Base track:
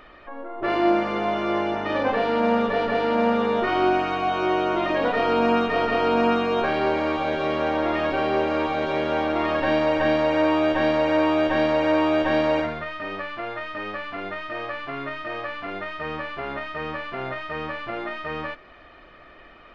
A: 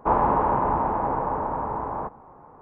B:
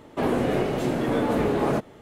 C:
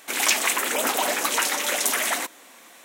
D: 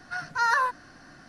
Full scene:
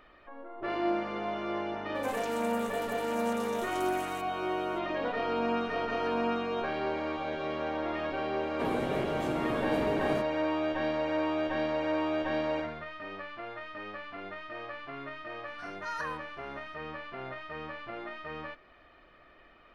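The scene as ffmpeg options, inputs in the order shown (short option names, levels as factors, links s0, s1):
-filter_complex "[4:a]asplit=2[s0][s1];[0:a]volume=0.316[s2];[3:a]acompressor=threshold=0.0398:ratio=6:attack=3.2:release=140:knee=1:detection=peak[s3];[s0]acompressor=threshold=0.0398:ratio=3:attack=6.5:release=285:knee=1:detection=peak[s4];[s3]atrim=end=2.84,asetpts=PTS-STARTPTS,volume=0.15,afade=t=in:d=0.004:c=hsin,afade=t=out:st=2.836:d=0.004:c=hsin,adelay=1950[s5];[s4]atrim=end=1.28,asetpts=PTS-STARTPTS,volume=0.133,afade=t=in:d=0.004:c=hsin,afade=t=out:st=1.276:d=0.004:c=hsin,adelay=243873S[s6];[2:a]atrim=end=2.01,asetpts=PTS-STARTPTS,volume=0.335,afade=t=in:d=0.004:c=hsin,afade=t=out:st=2.006:d=0.004:c=hsin,adelay=371322S[s7];[s1]atrim=end=1.28,asetpts=PTS-STARTPTS,volume=0.2,afade=t=in:d=0.004:c=hsin,afade=t=out:st=1.276:d=0.004:c=hsin,adelay=15470[s8];[s2][s5][s6][s7][s8]amix=inputs=5:normalize=0"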